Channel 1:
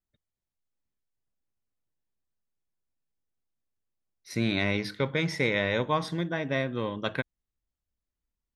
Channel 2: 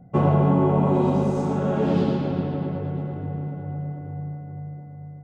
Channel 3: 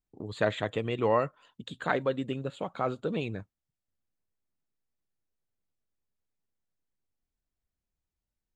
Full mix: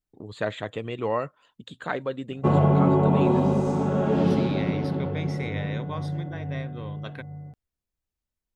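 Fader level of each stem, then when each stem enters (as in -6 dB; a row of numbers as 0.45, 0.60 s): -9.0, -0.5, -1.0 dB; 0.00, 2.30, 0.00 s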